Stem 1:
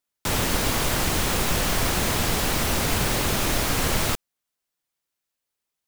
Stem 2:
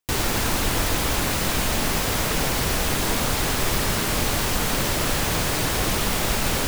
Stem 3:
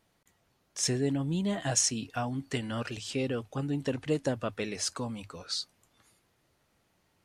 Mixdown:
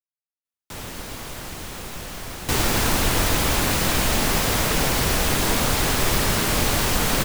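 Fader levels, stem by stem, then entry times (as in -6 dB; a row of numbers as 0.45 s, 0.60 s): -11.0 dB, +2.0 dB, mute; 0.45 s, 2.40 s, mute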